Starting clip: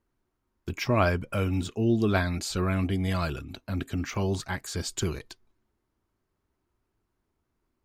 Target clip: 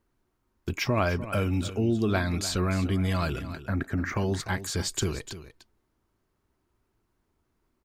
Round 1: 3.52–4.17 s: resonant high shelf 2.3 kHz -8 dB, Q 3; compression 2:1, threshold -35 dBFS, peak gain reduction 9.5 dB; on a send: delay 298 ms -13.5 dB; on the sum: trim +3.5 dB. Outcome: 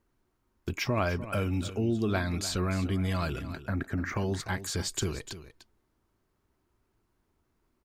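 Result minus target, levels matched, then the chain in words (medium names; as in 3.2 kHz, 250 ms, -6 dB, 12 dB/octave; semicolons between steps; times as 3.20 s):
compression: peak gain reduction +3 dB
3.52–4.17 s: resonant high shelf 2.3 kHz -8 dB, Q 3; compression 2:1, threshold -29 dBFS, peak gain reduction 6.5 dB; on a send: delay 298 ms -13.5 dB; on the sum: trim +3.5 dB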